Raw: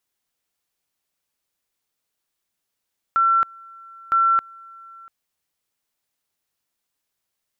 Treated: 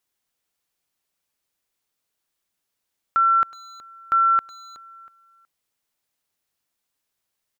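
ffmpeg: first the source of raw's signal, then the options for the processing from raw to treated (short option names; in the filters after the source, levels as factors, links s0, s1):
-f lavfi -i "aevalsrc='pow(10,(-14-26*gte(mod(t,0.96),0.27))/20)*sin(2*PI*1350*t)':d=1.92:s=44100"
-filter_complex "[0:a]asplit=2[s0][s1];[s1]adelay=370,highpass=300,lowpass=3400,asoftclip=type=hard:threshold=0.075,volume=0.2[s2];[s0][s2]amix=inputs=2:normalize=0"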